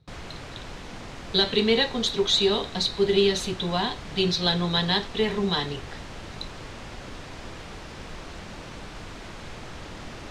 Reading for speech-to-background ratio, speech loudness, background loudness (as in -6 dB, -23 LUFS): 16.0 dB, -24.0 LUFS, -40.0 LUFS